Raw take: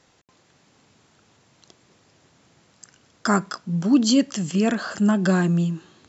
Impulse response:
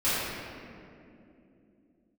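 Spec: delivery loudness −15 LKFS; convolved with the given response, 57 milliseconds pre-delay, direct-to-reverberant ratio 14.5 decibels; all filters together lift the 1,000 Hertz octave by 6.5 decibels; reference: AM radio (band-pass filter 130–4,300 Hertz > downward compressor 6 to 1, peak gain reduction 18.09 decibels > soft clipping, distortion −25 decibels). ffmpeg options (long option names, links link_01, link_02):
-filter_complex "[0:a]equalizer=frequency=1000:width_type=o:gain=8.5,asplit=2[link_01][link_02];[1:a]atrim=start_sample=2205,adelay=57[link_03];[link_02][link_03]afir=irnorm=-1:irlink=0,volume=-28.5dB[link_04];[link_01][link_04]amix=inputs=2:normalize=0,highpass=130,lowpass=4300,acompressor=threshold=-30dB:ratio=6,asoftclip=threshold=-19.5dB,volume=19dB"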